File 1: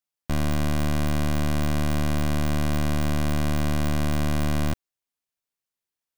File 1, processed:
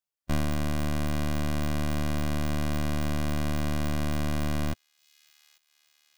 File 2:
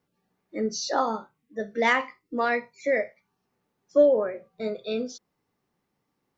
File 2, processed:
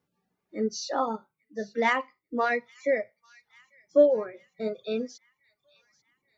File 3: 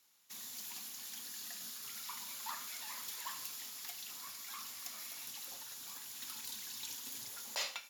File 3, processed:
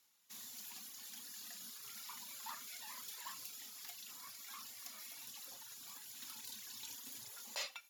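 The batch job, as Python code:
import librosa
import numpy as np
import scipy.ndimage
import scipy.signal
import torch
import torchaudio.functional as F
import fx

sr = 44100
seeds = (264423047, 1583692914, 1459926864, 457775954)

y = fx.echo_wet_highpass(x, sr, ms=841, feedback_pct=56, hz=2400.0, wet_db=-19.5)
y = fx.hpss(y, sr, part='percussive', gain_db=-6)
y = fx.dereverb_blind(y, sr, rt60_s=0.83)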